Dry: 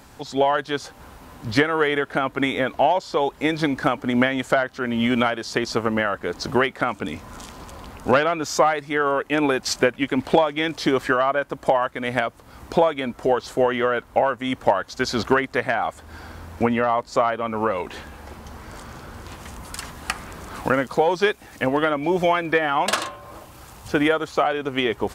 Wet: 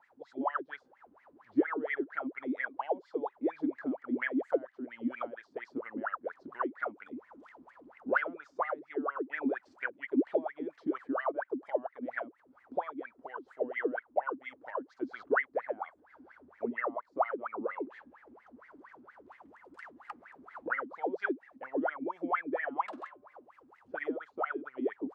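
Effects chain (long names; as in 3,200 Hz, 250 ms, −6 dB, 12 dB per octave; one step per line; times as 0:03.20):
LFO wah 4.3 Hz 250–2,100 Hz, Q 19
level +1 dB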